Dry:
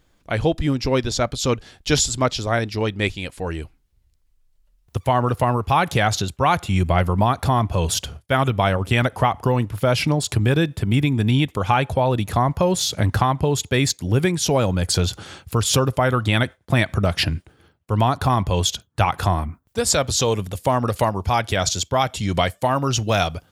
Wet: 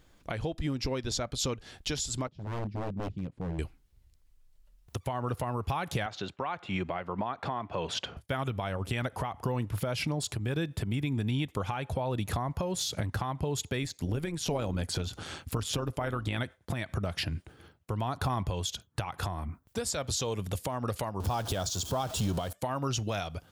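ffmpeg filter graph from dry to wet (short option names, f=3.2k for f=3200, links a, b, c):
-filter_complex "[0:a]asettb=1/sr,asplit=3[a][b][c];[a]atrim=end=2.274[d];[b]atrim=start=2.27:end=3.59,asetpts=PTS-STARTPTS,afade=t=in:d=0.004:c=qsin,afade=t=out:st=1.316:d=0.004:c=qsin,bandpass=f=160:t=q:w=1.5,aeval=exprs='0.0376*(abs(mod(val(0)/0.0376+3,4)-2)-1)':c=same[e];[c]atrim=start=3.586[f];[d][e]acrossfade=d=0.004:c1=hsin:c2=qsin[g];[g][f]acrossfade=d=0.004:c1=qsin:c2=hsin,asettb=1/sr,asplit=3[h][i][j];[h]atrim=end=6.064[k];[i]atrim=start=6.06:end=8.17,asetpts=PTS-STARTPTS,afade=t=in:d=0.004:c=qsin,afade=t=out:st=2.106:d=0.004:c=qsin,highpass=160,lowpass=2.8k,lowshelf=f=320:g=-7.5[l];[j]atrim=start=8.166[m];[k][l]acrossfade=d=0.004:c1=hsin:c2=qsin[n];[n][m]acrossfade=d=0.004:c1=qsin:c2=hsin,asettb=1/sr,asplit=3[o][p][q];[o]atrim=end=13.834[r];[p]atrim=start=13.83:end=16.38,asetpts=PTS-STARTPTS,afade=t=in:d=0.004:c=qsin,afade=t=out:st=2.546:d=0.004:c=qsin,acrossover=split=3100[s][t];[t]acompressor=threshold=-26dB:ratio=4:attack=1:release=60[u];[s][u]amix=inputs=2:normalize=0,tremolo=f=160:d=0.519[v];[q]atrim=start=16.376[w];[r][v]acrossfade=d=0.004:c1=hsin:c2=qsin[x];[x][w]acrossfade=d=0.004:c1=qsin:c2=hsin,asettb=1/sr,asplit=3[y][z][aa];[y]atrim=end=21.204[ab];[z]atrim=start=21.2:end=22.53,asetpts=PTS-STARTPTS,afade=t=in:d=0.004:c=qsin,afade=t=out:st=1.326:d=0.004:c=qsin,aeval=exprs='val(0)+0.5*0.0531*sgn(val(0))':c=same,equalizer=f=2.1k:w=2.2:g=-13[ac];[aa]atrim=start=22.526[ad];[ab][ac]acrossfade=d=0.004:c1=hsin:c2=qsin[ae];[ae][ad]acrossfade=d=0.004:c1=qsin:c2=hsin,acompressor=threshold=-26dB:ratio=6,alimiter=limit=-21dB:level=0:latency=1:release=357"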